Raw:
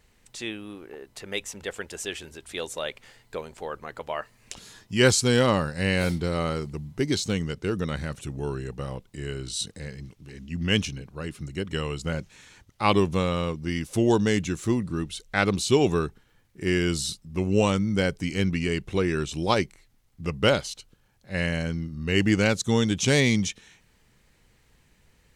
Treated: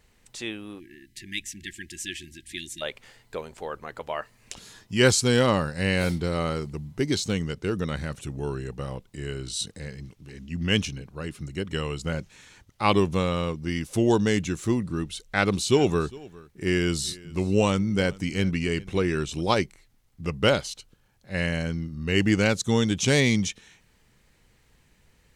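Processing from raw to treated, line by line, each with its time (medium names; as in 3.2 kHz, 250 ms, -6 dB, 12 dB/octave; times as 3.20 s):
0.80–2.82 s: spectral selection erased 370–1600 Hz
15.10–19.41 s: delay 407 ms -22 dB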